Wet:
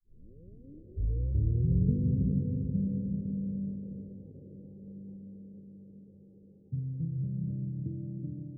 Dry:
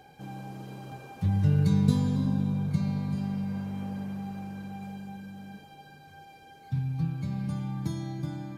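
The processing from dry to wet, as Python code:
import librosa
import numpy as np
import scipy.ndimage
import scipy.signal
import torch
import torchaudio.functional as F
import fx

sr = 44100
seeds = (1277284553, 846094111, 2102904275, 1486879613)

y = fx.tape_start_head(x, sr, length_s=1.97)
y = scipy.signal.sosfilt(scipy.signal.butter(12, 540.0, 'lowpass', fs=sr, output='sos'), y)
y = fx.echo_diffused(y, sr, ms=452, feedback_pct=50, wet_db=-3.5)
y = F.gain(torch.from_numpy(y), -5.0).numpy()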